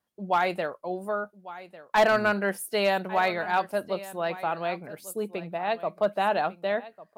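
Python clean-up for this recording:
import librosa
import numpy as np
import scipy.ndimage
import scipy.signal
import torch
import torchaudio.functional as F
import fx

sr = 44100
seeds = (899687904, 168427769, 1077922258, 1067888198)

y = fx.fix_declip(x, sr, threshold_db=-15.0)
y = fx.fix_echo_inverse(y, sr, delay_ms=1149, level_db=-17.0)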